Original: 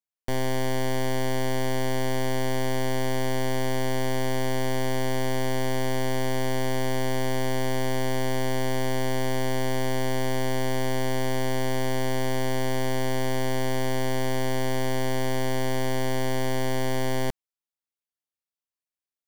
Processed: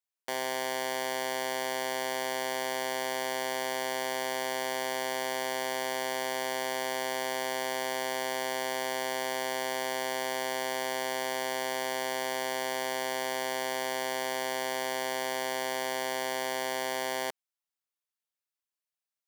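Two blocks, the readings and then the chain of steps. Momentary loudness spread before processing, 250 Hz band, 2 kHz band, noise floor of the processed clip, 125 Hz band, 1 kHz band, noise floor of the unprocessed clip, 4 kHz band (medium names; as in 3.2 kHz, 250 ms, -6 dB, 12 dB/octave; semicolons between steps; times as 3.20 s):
0 LU, -14.0 dB, 0.0 dB, under -85 dBFS, -26.5 dB, -1.0 dB, under -85 dBFS, 0.0 dB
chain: high-pass 600 Hz 12 dB/octave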